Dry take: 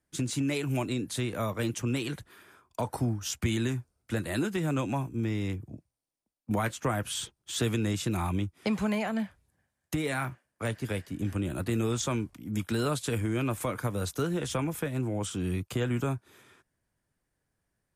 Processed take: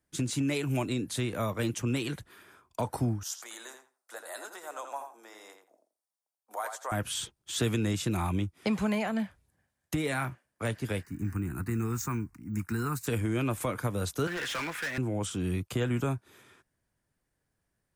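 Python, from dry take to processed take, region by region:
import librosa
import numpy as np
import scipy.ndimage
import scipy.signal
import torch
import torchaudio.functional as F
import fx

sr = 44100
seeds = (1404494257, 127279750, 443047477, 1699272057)

y = fx.chain(x, sr, fx.highpass(hz=650.0, slope=24),
    fx.peak_eq(hz=2600.0, db=-15.0, octaves=1.1),
    fx.echo_filtered(ms=84, feedback_pct=18, hz=4600.0, wet_db=-6.5), at=(3.23, 6.92))
y = fx.chain(y, sr, fx.fixed_phaser(hz=1400.0, stages=4),
    fx.resample_bad(factor=2, down='filtered', up='hold'), at=(11.03, 13.07))
y = fx.chain(y, sr, fx.bandpass_q(hz=1800.0, q=2.3),
    fx.leveller(passes=5), at=(14.27, 14.98))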